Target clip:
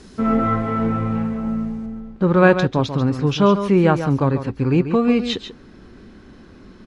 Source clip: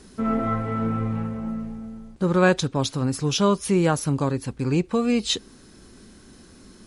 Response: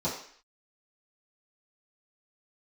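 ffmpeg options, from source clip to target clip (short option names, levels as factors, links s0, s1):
-af "asetnsamples=n=441:p=0,asendcmd='1.86 lowpass f 2700',lowpass=7000,aecho=1:1:140:0.316,volume=1.78"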